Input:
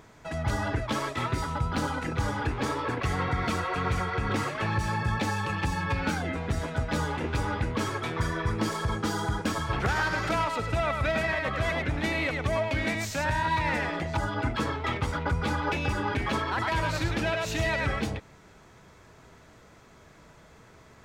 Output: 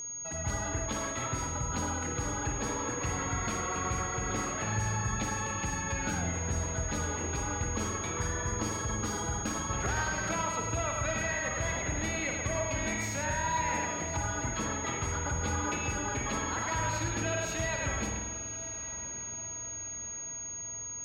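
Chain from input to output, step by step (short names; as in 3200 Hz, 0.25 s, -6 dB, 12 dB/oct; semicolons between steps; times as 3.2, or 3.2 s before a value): diffused feedback echo 1.161 s, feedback 54%, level -15.5 dB; whine 6600 Hz -30 dBFS; spring tank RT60 1.4 s, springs 47 ms, chirp 60 ms, DRR 2.5 dB; gain -7 dB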